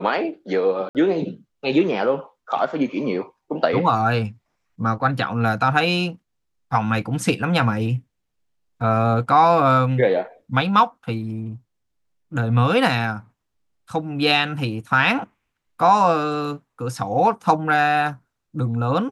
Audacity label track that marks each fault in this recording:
0.890000	0.950000	dropout 58 ms

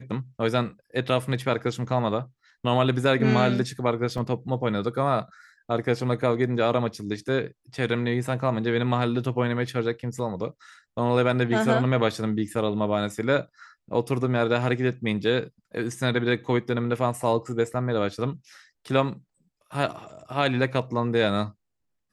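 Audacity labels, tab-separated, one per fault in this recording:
4.180000	4.180000	dropout 2.5 ms

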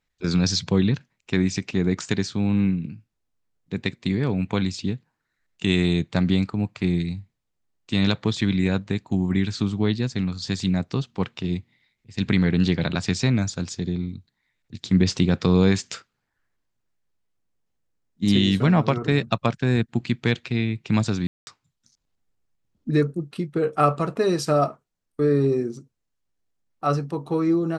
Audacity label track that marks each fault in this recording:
21.270000	21.470000	dropout 200 ms

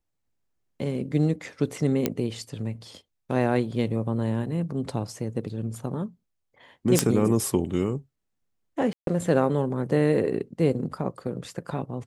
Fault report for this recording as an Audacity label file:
2.060000	2.060000	pop -9 dBFS
6.990000	6.990000	pop -3 dBFS
8.930000	9.070000	dropout 142 ms

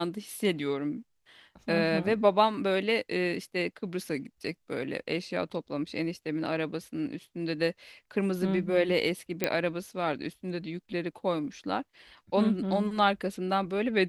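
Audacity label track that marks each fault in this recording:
9.440000	9.440000	pop -10 dBFS

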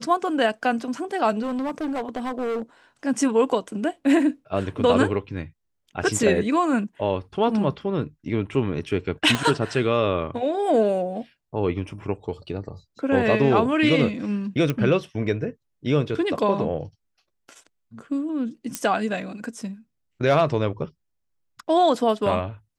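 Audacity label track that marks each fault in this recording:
1.420000	2.620000	clipped -23.5 dBFS
9.350000	9.350000	pop -8 dBFS
14.700000	14.700000	pop -12 dBFS
18.750000	18.750000	pop -9 dBFS

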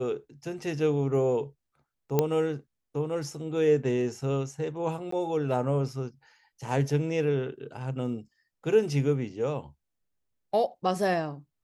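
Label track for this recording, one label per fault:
2.190000	2.190000	pop -10 dBFS
5.110000	5.120000	dropout 14 ms

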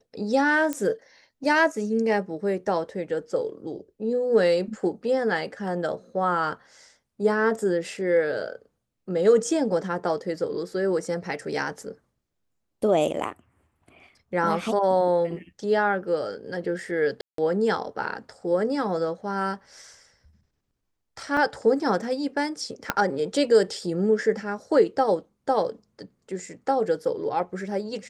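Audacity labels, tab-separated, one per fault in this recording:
0.730000	0.730000	pop -13 dBFS
17.210000	17.380000	dropout 173 ms
21.370000	21.370000	dropout 2.1 ms
22.900000	22.900000	pop -7 dBFS

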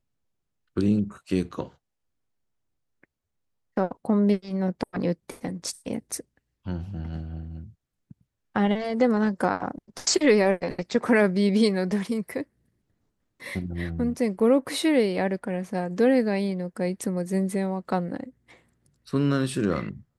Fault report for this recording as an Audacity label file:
14.390000	14.400000	dropout 5.7 ms

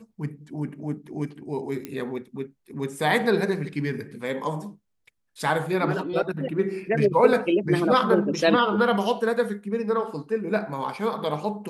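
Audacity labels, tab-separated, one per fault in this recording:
1.850000	1.850000	pop -18 dBFS

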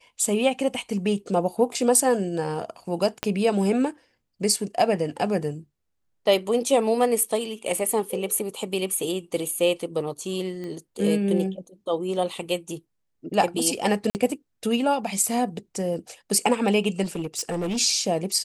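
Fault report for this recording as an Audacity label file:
3.230000	3.230000	pop -9 dBFS
10.640000	10.640000	pop -24 dBFS
14.100000	14.150000	dropout 49 ms
17.030000	17.780000	clipped -23.5 dBFS

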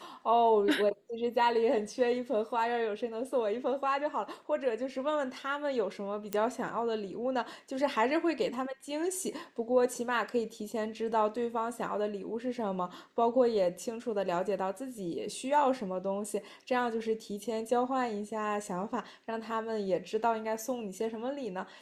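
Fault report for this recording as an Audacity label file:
6.330000	6.330000	pop -16 dBFS

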